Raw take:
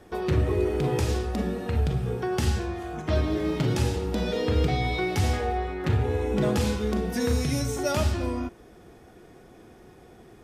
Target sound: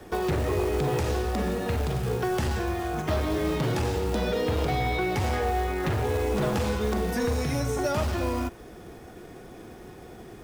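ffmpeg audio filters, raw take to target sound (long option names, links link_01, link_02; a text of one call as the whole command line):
ffmpeg -i in.wav -filter_complex "[0:a]aeval=exprs='0.251*sin(PI/2*2*val(0)/0.251)':channel_layout=same,acrusher=bits=5:mode=log:mix=0:aa=0.000001,acrossover=split=180|380|2100[link_01][link_02][link_03][link_04];[link_01]acompressor=threshold=-24dB:ratio=4[link_05];[link_02]acompressor=threshold=-35dB:ratio=4[link_06];[link_03]acompressor=threshold=-22dB:ratio=4[link_07];[link_04]acompressor=threshold=-36dB:ratio=4[link_08];[link_05][link_06][link_07][link_08]amix=inputs=4:normalize=0,volume=-4dB" out.wav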